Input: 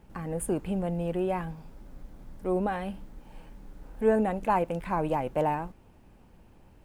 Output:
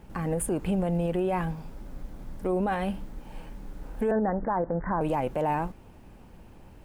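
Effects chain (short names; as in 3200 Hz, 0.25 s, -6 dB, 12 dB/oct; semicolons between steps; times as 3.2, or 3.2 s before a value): 4.11–5.01 steep low-pass 1900 Hz 96 dB/oct; limiter -25.5 dBFS, peak gain reduction 11.5 dB; gain +6 dB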